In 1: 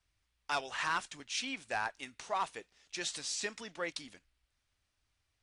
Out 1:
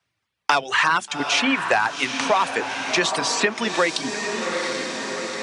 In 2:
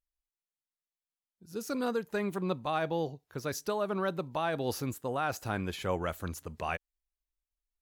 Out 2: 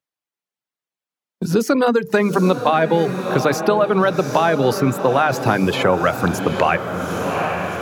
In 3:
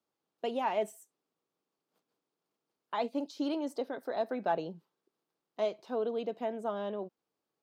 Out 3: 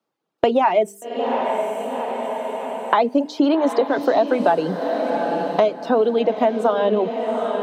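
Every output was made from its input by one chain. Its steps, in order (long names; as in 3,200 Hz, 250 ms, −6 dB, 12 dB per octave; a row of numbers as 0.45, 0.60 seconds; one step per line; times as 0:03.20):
mains-hum notches 50/100/150/200/250/300/350/400/450 Hz
reverb reduction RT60 0.76 s
downward expander −57 dBFS
high-pass filter 110 Hz 24 dB per octave
high-shelf EQ 4,600 Hz −10.5 dB
downward compressor 2 to 1, threshold −40 dBFS
on a send: feedback delay with all-pass diffusion 789 ms, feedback 42%, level −10 dB
on the sum: multiband upward and downward compressor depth 70%
normalise the peak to −2 dBFS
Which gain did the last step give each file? +22.0, +23.0, +22.5 decibels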